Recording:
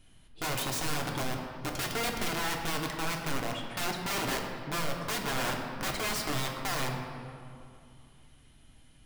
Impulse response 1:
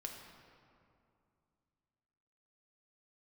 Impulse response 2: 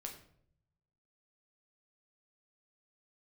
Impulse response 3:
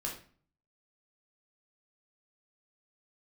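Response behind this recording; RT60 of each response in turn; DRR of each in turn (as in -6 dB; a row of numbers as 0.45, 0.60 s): 1; 2.5, 0.65, 0.45 s; 1.0, 1.5, -2.0 dB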